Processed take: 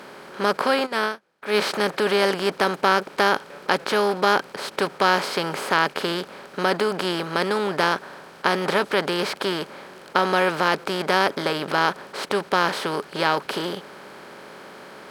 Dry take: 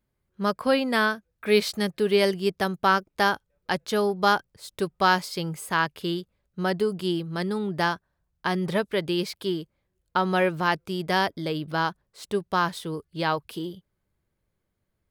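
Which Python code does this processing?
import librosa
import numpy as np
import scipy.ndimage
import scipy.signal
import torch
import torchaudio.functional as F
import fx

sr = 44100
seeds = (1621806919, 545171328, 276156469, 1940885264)

y = fx.bin_compress(x, sr, power=0.4)
y = fx.highpass(y, sr, hz=240.0, slope=6)
y = fx.high_shelf(y, sr, hz=9700.0, db=-5.5)
y = fx.upward_expand(y, sr, threshold_db=-32.0, expansion=2.5, at=(0.85, 1.53), fade=0.02)
y = y * librosa.db_to_amplitude(-1.5)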